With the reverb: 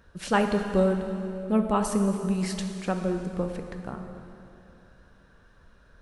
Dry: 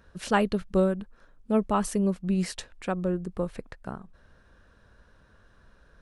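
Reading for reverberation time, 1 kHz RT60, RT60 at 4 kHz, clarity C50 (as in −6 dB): 2.9 s, 2.7 s, 2.6 s, 6.0 dB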